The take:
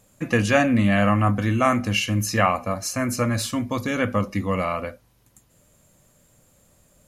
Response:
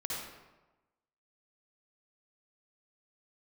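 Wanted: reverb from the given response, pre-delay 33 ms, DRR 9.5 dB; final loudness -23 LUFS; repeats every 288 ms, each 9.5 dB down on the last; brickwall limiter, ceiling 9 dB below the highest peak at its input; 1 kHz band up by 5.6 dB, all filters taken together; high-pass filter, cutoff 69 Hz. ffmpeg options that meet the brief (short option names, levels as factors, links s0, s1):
-filter_complex "[0:a]highpass=69,equalizer=f=1000:t=o:g=7.5,alimiter=limit=0.335:level=0:latency=1,aecho=1:1:288|576|864|1152:0.335|0.111|0.0365|0.012,asplit=2[s0][s1];[1:a]atrim=start_sample=2205,adelay=33[s2];[s1][s2]afir=irnorm=-1:irlink=0,volume=0.237[s3];[s0][s3]amix=inputs=2:normalize=0,volume=0.841"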